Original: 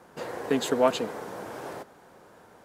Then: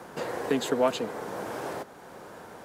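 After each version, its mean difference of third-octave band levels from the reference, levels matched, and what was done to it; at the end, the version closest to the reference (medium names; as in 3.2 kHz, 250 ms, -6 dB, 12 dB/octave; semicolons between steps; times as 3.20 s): 4.5 dB: three bands compressed up and down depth 40%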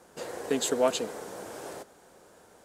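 3.0 dB: ten-band graphic EQ 125 Hz -6 dB, 250 Hz -3 dB, 1 kHz -5 dB, 2 kHz -3 dB, 8 kHz +7 dB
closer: second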